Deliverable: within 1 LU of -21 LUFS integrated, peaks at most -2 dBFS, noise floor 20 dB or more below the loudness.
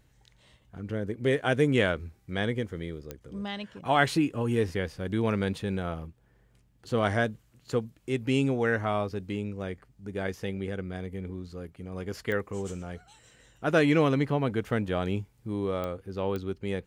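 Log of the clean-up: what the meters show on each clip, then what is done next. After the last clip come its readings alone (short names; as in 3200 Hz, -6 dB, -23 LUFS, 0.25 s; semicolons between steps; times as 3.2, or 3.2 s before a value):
clicks 4; loudness -29.5 LUFS; peak -7.5 dBFS; loudness target -21.0 LUFS
-> de-click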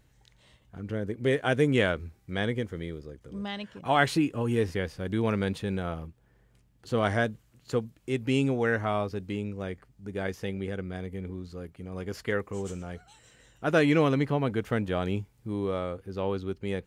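clicks 0; loudness -29.5 LUFS; peak -7.5 dBFS; loudness target -21.0 LUFS
-> gain +8.5 dB; limiter -2 dBFS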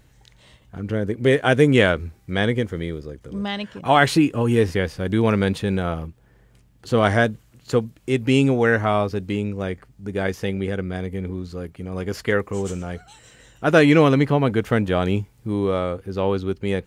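loudness -21.0 LUFS; peak -2.0 dBFS; noise floor -56 dBFS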